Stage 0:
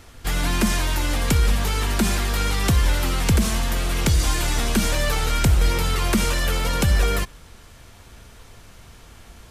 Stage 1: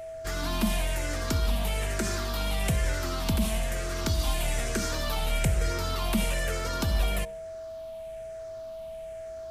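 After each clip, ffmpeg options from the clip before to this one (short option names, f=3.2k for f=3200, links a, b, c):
-af "afftfilt=real='re*pow(10,8/40*sin(2*PI*(0.5*log(max(b,1)*sr/1024/100)/log(2)-(-1.1)*(pts-256)/sr)))':imag='im*pow(10,8/40*sin(2*PI*(0.5*log(max(b,1)*sr/1024/100)/log(2)-(-1.1)*(pts-256)/sr)))':win_size=1024:overlap=0.75,bandreject=f=66.96:t=h:w=4,bandreject=f=133.92:t=h:w=4,bandreject=f=200.88:t=h:w=4,bandreject=f=267.84:t=h:w=4,bandreject=f=334.8:t=h:w=4,bandreject=f=401.76:t=h:w=4,bandreject=f=468.72:t=h:w=4,bandreject=f=535.68:t=h:w=4,bandreject=f=602.64:t=h:w=4,bandreject=f=669.6:t=h:w=4,bandreject=f=736.56:t=h:w=4,bandreject=f=803.52:t=h:w=4,bandreject=f=870.48:t=h:w=4,bandreject=f=937.44:t=h:w=4,aeval=exprs='val(0)+0.0398*sin(2*PI*650*n/s)':c=same,volume=-8.5dB"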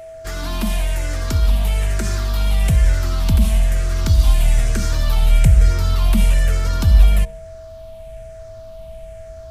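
-af "asubboost=boost=4.5:cutoff=160,volume=3.5dB"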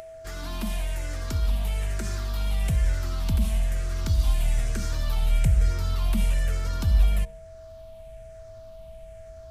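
-af "acompressor=mode=upward:threshold=-30dB:ratio=2.5,volume=-9dB"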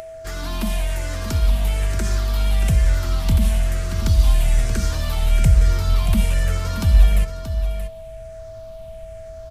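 -af "aecho=1:1:629:0.335,volume=6.5dB"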